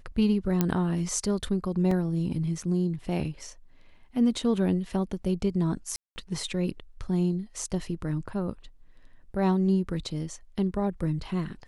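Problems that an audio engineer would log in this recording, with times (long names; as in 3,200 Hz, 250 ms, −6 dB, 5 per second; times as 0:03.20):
0:00.61: click −10 dBFS
0:01.91: drop-out 3.6 ms
0:05.96–0:06.16: drop-out 200 ms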